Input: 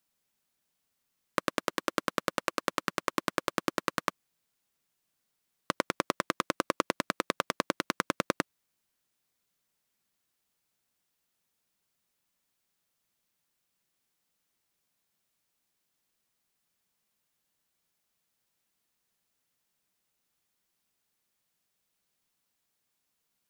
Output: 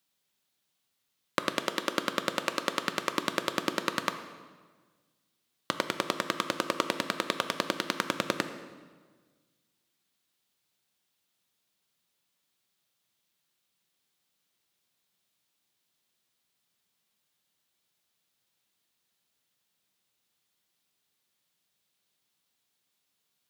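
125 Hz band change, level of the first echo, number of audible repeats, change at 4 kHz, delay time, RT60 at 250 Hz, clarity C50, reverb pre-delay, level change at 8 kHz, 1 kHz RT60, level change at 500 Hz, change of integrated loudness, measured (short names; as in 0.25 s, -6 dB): +0.5 dB, none, none, +5.0 dB, none, 1.7 s, 10.0 dB, 4 ms, +1.5 dB, 1.4 s, +1.0 dB, +1.5 dB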